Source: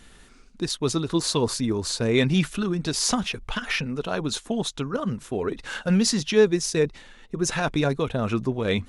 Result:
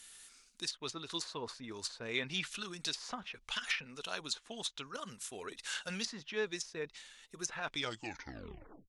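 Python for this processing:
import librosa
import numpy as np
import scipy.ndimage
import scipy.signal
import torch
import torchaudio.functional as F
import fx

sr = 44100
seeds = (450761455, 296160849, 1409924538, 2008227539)

y = fx.tape_stop_end(x, sr, length_s=1.15)
y = librosa.effects.preemphasis(y, coef=0.97, zi=[0.0])
y = fx.env_lowpass_down(y, sr, base_hz=1400.0, full_db=-30.0)
y = y * 10.0 ** (4.0 / 20.0)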